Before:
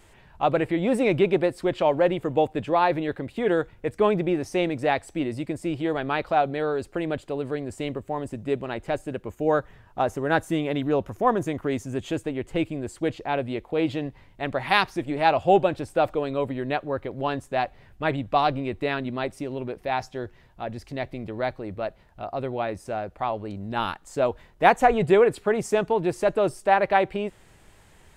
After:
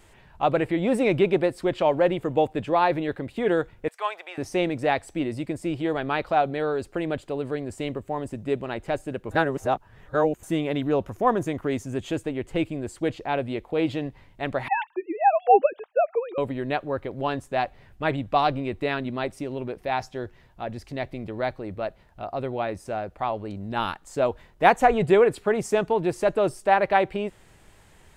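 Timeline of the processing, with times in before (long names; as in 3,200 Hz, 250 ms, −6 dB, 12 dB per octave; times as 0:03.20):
0:03.88–0:04.38: high-pass filter 790 Hz 24 dB per octave
0:09.31–0:10.43: reverse
0:14.68–0:16.38: three sine waves on the formant tracks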